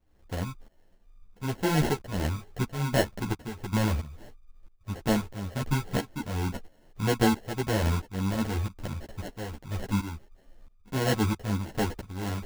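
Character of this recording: tremolo saw up 1.5 Hz, depth 85%; aliases and images of a low sample rate 1.2 kHz, jitter 0%; a shimmering, thickened sound

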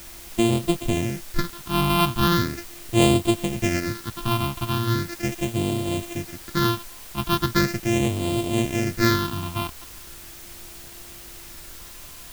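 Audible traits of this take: a buzz of ramps at a fixed pitch in blocks of 128 samples; phasing stages 6, 0.39 Hz, lowest notch 480–1600 Hz; a quantiser's noise floor 8-bit, dither triangular

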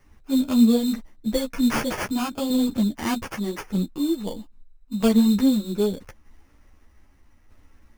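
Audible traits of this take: tremolo saw down 0.8 Hz, depth 40%; aliases and images of a low sample rate 3.9 kHz, jitter 0%; a shimmering, thickened sound

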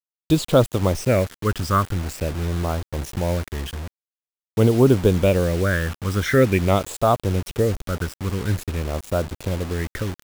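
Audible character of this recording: phasing stages 12, 0.46 Hz, lowest notch 700–2000 Hz; a quantiser's noise floor 6-bit, dither none

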